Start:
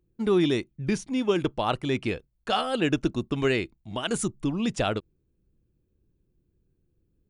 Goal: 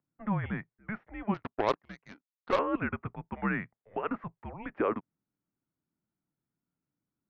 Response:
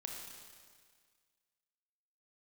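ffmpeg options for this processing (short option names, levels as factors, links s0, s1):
-filter_complex "[0:a]highpass=f=480:t=q:w=0.5412,highpass=f=480:t=q:w=1.307,lowpass=f=2100:t=q:w=0.5176,lowpass=f=2100:t=q:w=0.7071,lowpass=f=2100:t=q:w=1.932,afreqshift=-210,asettb=1/sr,asplit=3[s0][s1][s2];[s0]atrim=end=1.344[s3];[s1]atrim=start=1.34:end=2.59,asetpts=PTS-STARTPTS,afade=t=in:d=0.004:c=qsin,afade=t=out:st=1.246:d=0.004:c=qsin,aeval=exprs='0.211*(cos(1*acos(clip(val(0)/0.211,-1,1)))-cos(1*PI/2))+0.0075*(cos(5*acos(clip(val(0)/0.211,-1,1)))-cos(5*PI/2))+0.0335*(cos(7*acos(clip(val(0)/0.211,-1,1)))-cos(7*PI/2))':c=same[s4];[s2]atrim=start=2.586[s5];[s3][s4]acrossfade=d=0.004:c1=hsin:c2=qsin[s6];[s6][s5]acrossfade=d=0.004:c1=qsin:c2=hsin"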